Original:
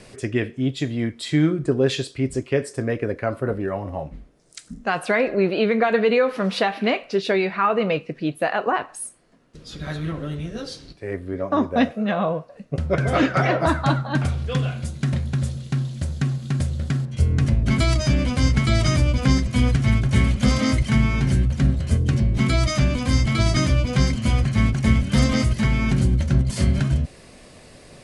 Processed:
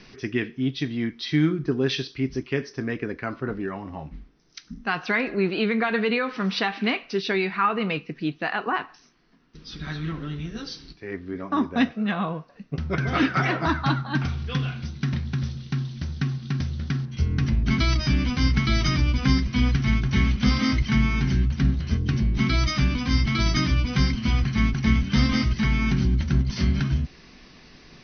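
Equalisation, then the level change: brick-wall FIR low-pass 6.2 kHz; peaking EQ 100 Hz -11 dB 0.57 oct; peaking EQ 570 Hz -14.5 dB 0.66 oct; 0.0 dB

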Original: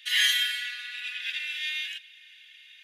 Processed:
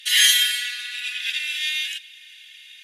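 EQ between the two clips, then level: peaking EQ 9.5 kHz +14 dB 2.2 oct; +1.5 dB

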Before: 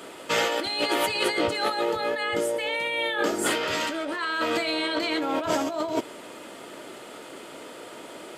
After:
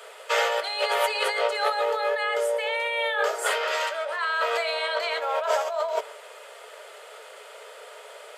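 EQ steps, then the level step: dynamic bell 890 Hz, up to +5 dB, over -37 dBFS, Q 0.87; rippled Chebyshev high-pass 420 Hz, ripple 3 dB; 0.0 dB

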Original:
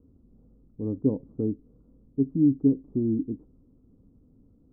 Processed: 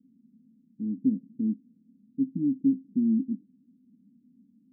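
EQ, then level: Butterworth band-pass 220 Hz, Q 3; +4.0 dB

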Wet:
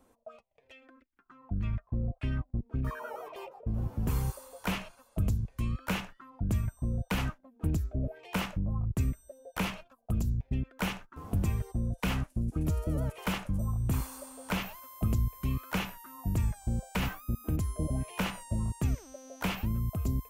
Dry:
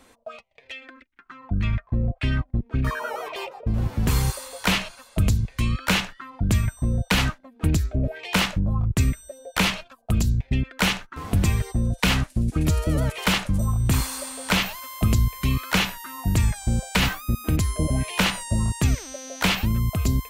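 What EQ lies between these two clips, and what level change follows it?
dynamic bell 2.2 kHz, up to +7 dB, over -38 dBFS, Q 1.2; graphic EQ 2/4/8 kHz -10/-10/-5 dB; -8.5 dB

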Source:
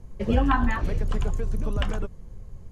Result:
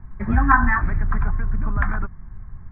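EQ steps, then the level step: low-pass 2.4 kHz 24 dB/octave; peaking EQ 1.7 kHz +9.5 dB 1.3 oct; static phaser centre 1.2 kHz, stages 4; +4.5 dB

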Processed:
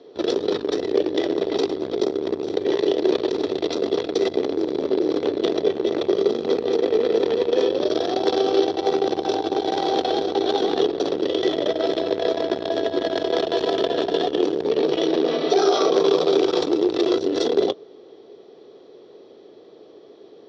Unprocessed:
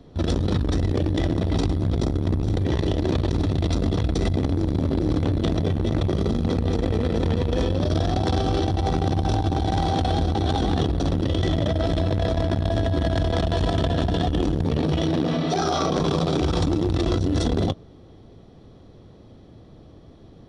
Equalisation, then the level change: resonant high-pass 410 Hz, resonance Q 4.9; low-pass 5.2 kHz 24 dB/octave; treble shelf 3.1 kHz +10.5 dB; -2.0 dB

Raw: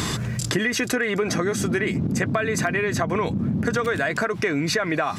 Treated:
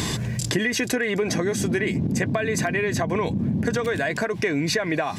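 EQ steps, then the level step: peaking EQ 1.3 kHz -14.5 dB 0.23 oct; 0.0 dB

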